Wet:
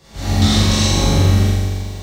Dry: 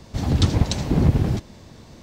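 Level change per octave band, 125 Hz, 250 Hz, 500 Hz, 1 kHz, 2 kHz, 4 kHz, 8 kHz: +6.0 dB, +5.0 dB, +6.0 dB, +9.0 dB, +11.5 dB, +13.0 dB, +14.0 dB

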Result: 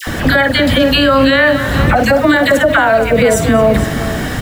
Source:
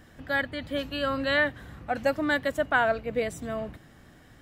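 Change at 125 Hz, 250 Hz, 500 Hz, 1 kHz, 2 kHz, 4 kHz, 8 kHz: +24.5 dB, +20.5 dB, +17.5 dB, +16.0 dB, +15.0 dB, +19.5 dB, +24.0 dB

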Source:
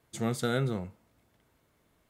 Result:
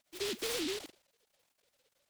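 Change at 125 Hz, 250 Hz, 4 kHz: -27.5 dB, -9.5 dB, +4.5 dB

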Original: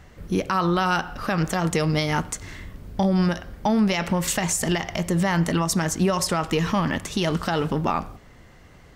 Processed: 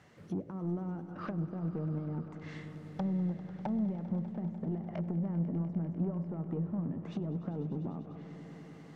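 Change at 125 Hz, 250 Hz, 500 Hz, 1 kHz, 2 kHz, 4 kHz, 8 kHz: -9.5 dB, -10.5 dB, -17.0 dB, -23.0 dB, -27.5 dB, under -30 dB, under -40 dB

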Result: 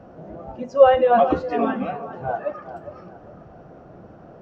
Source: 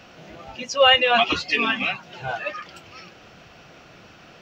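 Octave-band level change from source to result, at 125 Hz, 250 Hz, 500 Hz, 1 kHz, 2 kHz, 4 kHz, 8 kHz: +4.0 dB, +6.0 dB, +6.5 dB, +2.5 dB, -11.5 dB, -22.0 dB, no reading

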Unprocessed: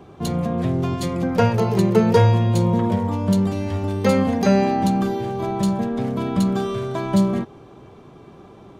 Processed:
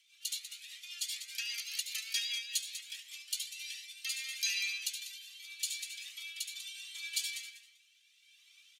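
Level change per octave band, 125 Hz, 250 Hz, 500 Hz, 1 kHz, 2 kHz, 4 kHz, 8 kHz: under -40 dB, under -40 dB, under -40 dB, under -40 dB, -7.0 dB, +0.5 dB, +2.0 dB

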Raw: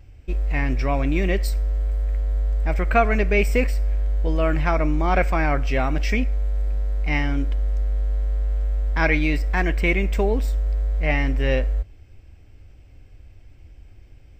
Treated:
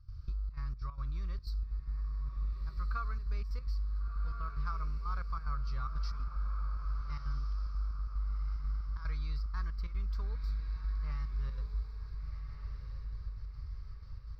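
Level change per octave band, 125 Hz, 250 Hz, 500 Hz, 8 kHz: -14.0 dB, -29.5 dB, -35.5 dB, -25.0 dB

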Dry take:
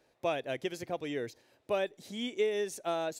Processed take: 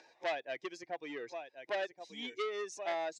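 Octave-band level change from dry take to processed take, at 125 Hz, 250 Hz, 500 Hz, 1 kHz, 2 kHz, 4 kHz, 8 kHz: under -15 dB, -9.5 dB, -5.5 dB, -1.5 dB, 0.0 dB, -3.5 dB, -5.5 dB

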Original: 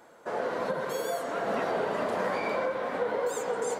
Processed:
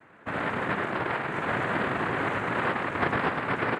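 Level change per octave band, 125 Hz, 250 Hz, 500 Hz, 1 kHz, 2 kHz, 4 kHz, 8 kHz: +12.0 dB, +6.5 dB, -3.5 dB, +3.5 dB, +8.5 dB, +3.5 dB, under -10 dB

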